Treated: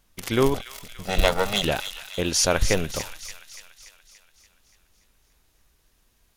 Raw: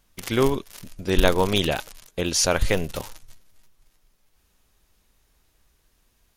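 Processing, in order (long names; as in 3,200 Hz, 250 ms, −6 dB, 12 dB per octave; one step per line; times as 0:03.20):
0:00.54–0:01.64: lower of the sound and its delayed copy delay 1.5 ms
delay with a high-pass on its return 288 ms, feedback 58%, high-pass 1,900 Hz, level −9 dB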